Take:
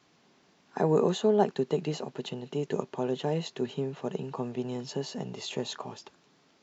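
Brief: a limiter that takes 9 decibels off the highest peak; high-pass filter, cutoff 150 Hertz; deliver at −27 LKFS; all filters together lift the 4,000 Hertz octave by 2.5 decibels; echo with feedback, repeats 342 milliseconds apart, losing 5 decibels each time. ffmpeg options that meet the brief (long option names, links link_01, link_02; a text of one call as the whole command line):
ffmpeg -i in.wav -af "highpass=150,equalizer=frequency=4000:width_type=o:gain=3,alimiter=limit=-20.5dB:level=0:latency=1,aecho=1:1:342|684|1026|1368|1710|2052|2394:0.562|0.315|0.176|0.0988|0.0553|0.031|0.0173,volume=5dB" out.wav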